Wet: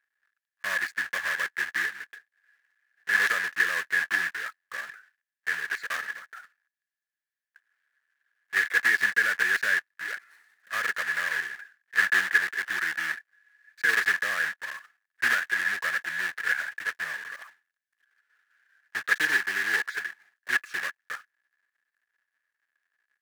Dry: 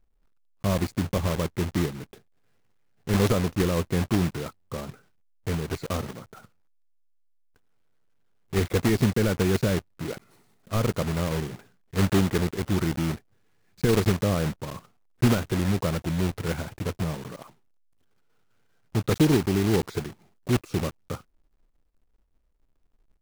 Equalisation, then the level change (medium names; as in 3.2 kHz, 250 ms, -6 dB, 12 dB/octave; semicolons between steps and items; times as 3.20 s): resonant high-pass 1.7 kHz, resonance Q 16; tilt EQ -3.5 dB/octave; treble shelf 3.9 kHz +9 dB; 0.0 dB